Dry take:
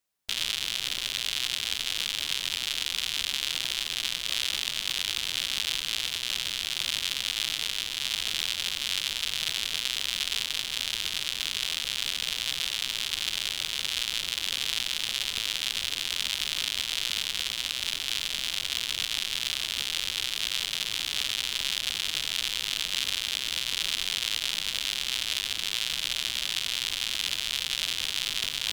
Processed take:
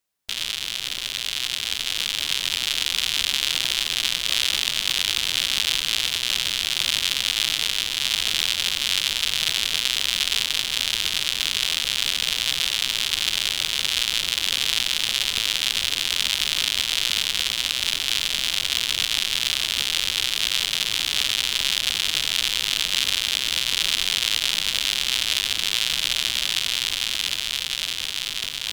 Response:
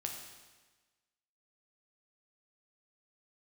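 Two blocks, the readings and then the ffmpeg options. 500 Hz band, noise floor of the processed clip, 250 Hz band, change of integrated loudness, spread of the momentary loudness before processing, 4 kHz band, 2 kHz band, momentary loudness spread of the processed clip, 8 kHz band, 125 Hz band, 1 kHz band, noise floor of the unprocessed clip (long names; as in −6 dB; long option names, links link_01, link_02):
+6.5 dB, −30 dBFS, +6.5 dB, +6.5 dB, 1 LU, +6.5 dB, +6.5 dB, 3 LU, +6.5 dB, +6.5 dB, +6.5 dB, −35 dBFS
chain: -af "dynaudnorm=framelen=450:gausssize=9:maxgain=6dB,volume=2dB"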